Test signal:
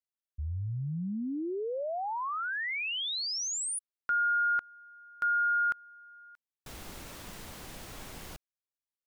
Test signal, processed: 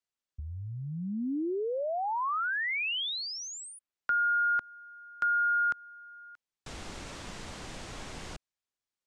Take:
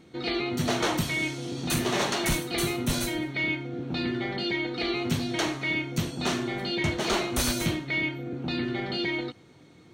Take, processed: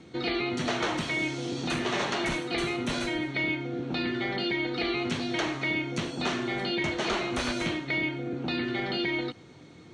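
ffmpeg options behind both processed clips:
-filter_complex "[0:a]acrossover=split=240|1200|3400[a][b][c][d];[a]acompressor=threshold=-43dB:ratio=4[e];[b]acompressor=threshold=-34dB:ratio=4[f];[c]acompressor=threshold=-35dB:ratio=4[g];[d]acompressor=threshold=-47dB:ratio=4[h];[e][f][g][h]amix=inputs=4:normalize=0,lowpass=f=8.3k:w=0.5412,lowpass=f=8.3k:w=1.3066,volume=3.5dB"

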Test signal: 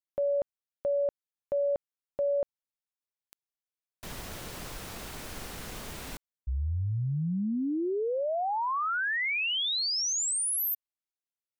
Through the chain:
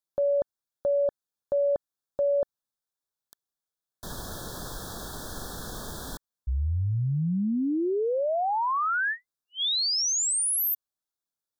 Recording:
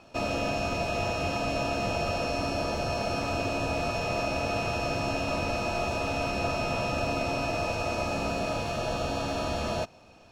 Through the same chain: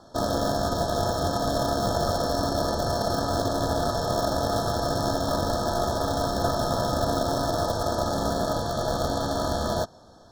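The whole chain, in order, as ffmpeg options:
-filter_complex "[0:a]asplit=2[a][b];[b]acrusher=bits=3:mix=0:aa=0.000001,volume=-11dB[c];[a][c]amix=inputs=2:normalize=0,asuperstop=centerf=2400:order=20:qfactor=1.6,volume=3.5dB"

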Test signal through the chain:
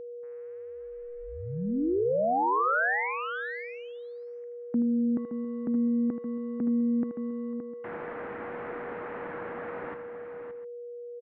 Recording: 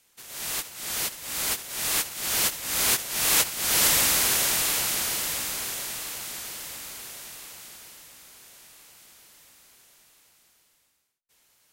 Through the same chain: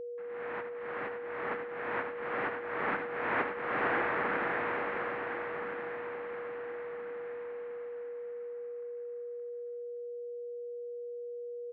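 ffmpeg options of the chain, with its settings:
-af "aeval=exprs='val(0)*gte(abs(val(0)),0.00531)':c=same,highpass=f=430:t=q:w=0.5412,highpass=f=430:t=q:w=1.307,lowpass=f=2.1k:t=q:w=0.5176,lowpass=f=2.1k:t=q:w=0.7071,lowpass=f=2.1k:t=q:w=1.932,afreqshift=-200,aecho=1:1:79|570|704:0.316|0.376|0.112,aeval=exprs='val(0)+0.0126*sin(2*PI*480*n/s)':c=same"

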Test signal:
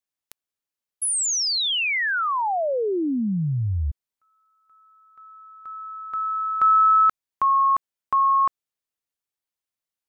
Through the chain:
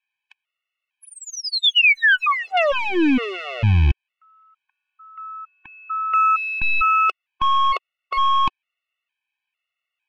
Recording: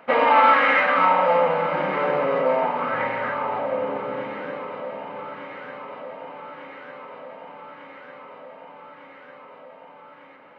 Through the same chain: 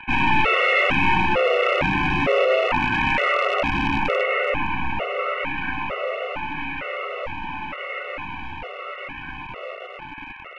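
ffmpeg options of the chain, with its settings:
-filter_complex "[0:a]aeval=exprs='0.596*(cos(1*acos(clip(val(0)/0.596,-1,1)))-cos(1*PI/2))+0.0168*(cos(3*acos(clip(val(0)/0.596,-1,1)))-cos(3*PI/2))+0.237*(cos(4*acos(clip(val(0)/0.596,-1,1)))-cos(4*PI/2))+0.119*(cos(5*acos(clip(val(0)/0.596,-1,1)))-cos(5*PI/2))+0.00596*(cos(8*acos(clip(val(0)/0.596,-1,1)))-cos(8*PI/2))':c=same,acrossover=split=790[a][b];[a]acrusher=bits=4:dc=4:mix=0:aa=0.000001[c];[c][b]amix=inputs=2:normalize=0,lowpass=f=2.6k:t=q:w=6.4,tiltshelf=f=720:g=5,areverse,acompressor=threshold=-18dB:ratio=16:attack=0.48:release=36:knee=1:detection=peak,areverse,afftfilt=real='re*gt(sin(2*PI*1.1*pts/sr)*(1-2*mod(floor(b*sr/1024/370),2)),0)':imag='im*gt(sin(2*PI*1.1*pts/sr)*(1-2*mod(floor(b*sr/1024/370),2)),0)':win_size=1024:overlap=0.75,volume=7.5dB"

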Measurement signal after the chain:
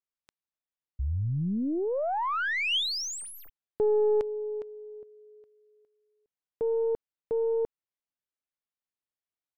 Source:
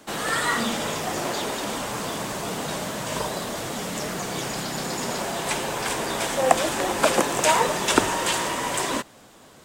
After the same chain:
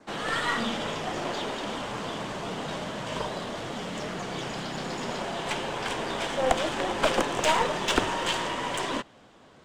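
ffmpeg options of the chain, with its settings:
-af "aeval=exprs='(tanh(3.55*val(0)+0.55)-tanh(0.55))/3.55':c=same,adynamicsmooth=sensitivity=1.5:basefreq=4.7k,adynamicequalizer=threshold=0.00316:dfrequency=3100:dqfactor=4.6:tfrequency=3100:tqfactor=4.6:attack=5:release=100:ratio=0.375:range=2.5:mode=boostabove:tftype=bell,volume=-1dB"

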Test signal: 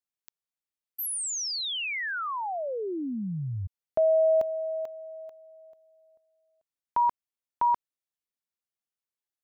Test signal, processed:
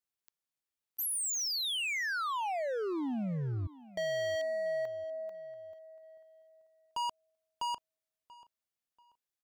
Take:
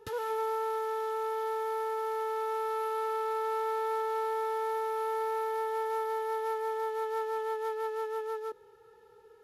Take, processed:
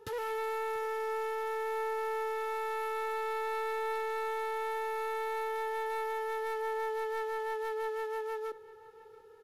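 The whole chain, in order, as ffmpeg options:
-filter_complex "[0:a]asoftclip=type=hard:threshold=-32.5dB,asplit=2[a][b];[b]adelay=686,lowpass=f=3.7k:p=1,volume=-19dB,asplit=2[c][d];[d]adelay=686,lowpass=f=3.7k:p=1,volume=0.31,asplit=2[e][f];[f]adelay=686,lowpass=f=3.7k:p=1,volume=0.31[g];[a][c][e][g]amix=inputs=4:normalize=0"

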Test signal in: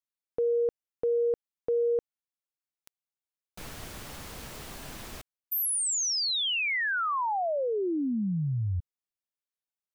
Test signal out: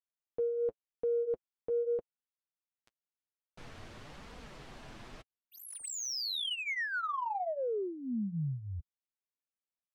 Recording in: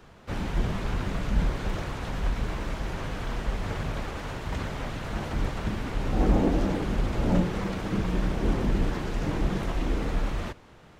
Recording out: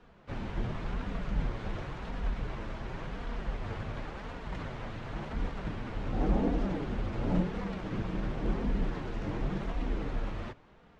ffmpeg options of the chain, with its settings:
-af "flanger=delay=4.1:depth=5.2:regen=-27:speed=0.92:shape=sinusoidal,adynamicsmooth=sensitivity=5.5:basefreq=4.5k,volume=-2.5dB"

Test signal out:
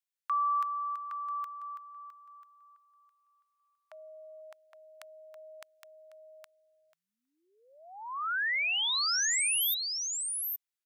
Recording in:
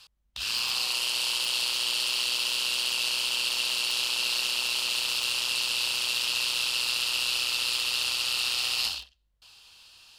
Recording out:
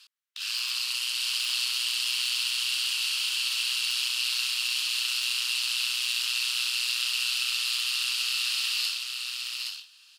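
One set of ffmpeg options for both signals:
-filter_complex "[0:a]highpass=f=1.3k:w=0.5412,highpass=f=1.3k:w=1.3066,asplit=2[a][b];[b]aecho=0:1:816:0.596[c];[a][c]amix=inputs=2:normalize=0,volume=-1.5dB"

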